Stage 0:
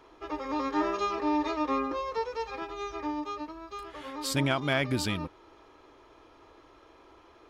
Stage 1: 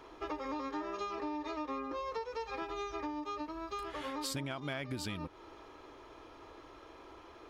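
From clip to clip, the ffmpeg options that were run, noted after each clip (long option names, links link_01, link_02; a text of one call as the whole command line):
ffmpeg -i in.wav -af "acompressor=threshold=-38dB:ratio=10,volume=2.5dB" out.wav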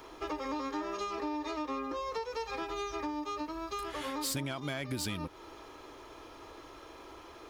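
ffmpeg -i in.wav -filter_complex "[0:a]highshelf=frequency=6100:gain=12,acrossover=split=420[link_01][link_02];[link_02]asoftclip=type=tanh:threshold=-33.5dB[link_03];[link_01][link_03]amix=inputs=2:normalize=0,volume=3dB" out.wav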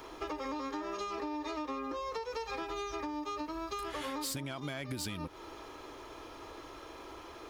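ffmpeg -i in.wav -af "acompressor=threshold=-37dB:ratio=6,volume=2dB" out.wav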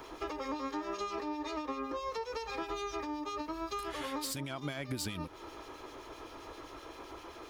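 ffmpeg -i in.wav -filter_complex "[0:a]acrossover=split=2200[link_01][link_02];[link_01]aeval=exprs='val(0)*(1-0.5/2+0.5/2*cos(2*PI*7.7*n/s))':channel_layout=same[link_03];[link_02]aeval=exprs='val(0)*(1-0.5/2-0.5/2*cos(2*PI*7.7*n/s))':channel_layout=same[link_04];[link_03][link_04]amix=inputs=2:normalize=0,volume=2.5dB" out.wav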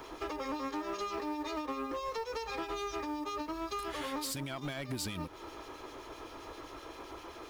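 ffmpeg -i in.wav -af "acrusher=bits=7:mode=log:mix=0:aa=0.000001,asoftclip=type=hard:threshold=-33dB,volume=1dB" out.wav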